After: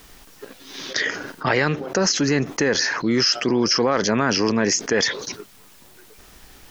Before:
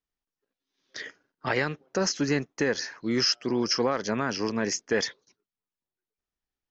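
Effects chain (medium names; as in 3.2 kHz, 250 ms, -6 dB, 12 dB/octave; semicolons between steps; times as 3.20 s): level flattener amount 70%; trim +4 dB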